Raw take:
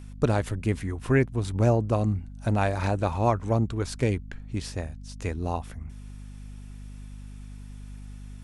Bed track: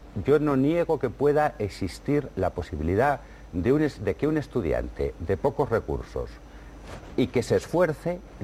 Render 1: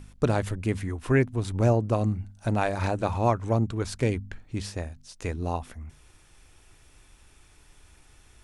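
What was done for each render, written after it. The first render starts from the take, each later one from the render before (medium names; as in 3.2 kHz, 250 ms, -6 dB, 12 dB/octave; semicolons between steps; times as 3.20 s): de-hum 50 Hz, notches 5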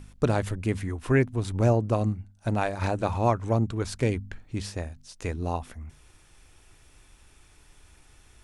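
2.03–2.82 s: upward expansion, over -37 dBFS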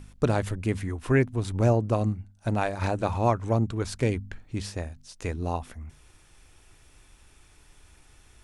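no audible change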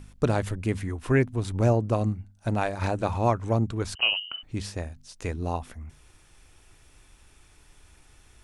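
3.95–4.43 s: frequency inversion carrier 3 kHz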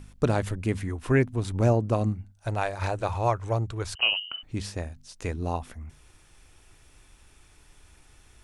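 2.32–4.01 s: peaking EQ 230 Hz -13.5 dB 0.79 oct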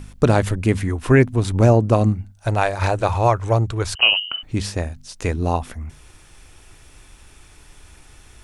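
trim +9 dB; peak limiter -3 dBFS, peak gain reduction 2 dB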